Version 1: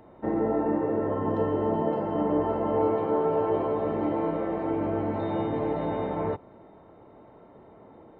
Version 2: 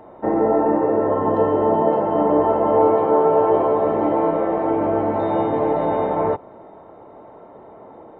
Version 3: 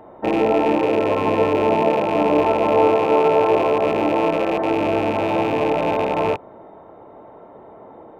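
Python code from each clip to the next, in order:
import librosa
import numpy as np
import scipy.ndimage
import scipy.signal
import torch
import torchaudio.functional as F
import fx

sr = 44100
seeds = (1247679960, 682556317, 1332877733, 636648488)

y1 = fx.peak_eq(x, sr, hz=760.0, db=10.0, octaves=2.5)
y1 = F.gain(torch.from_numpy(y1), 1.5).numpy()
y2 = fx.rattle_buzz(y1, sr, strikes_db=-30.0, level_db=-19.0)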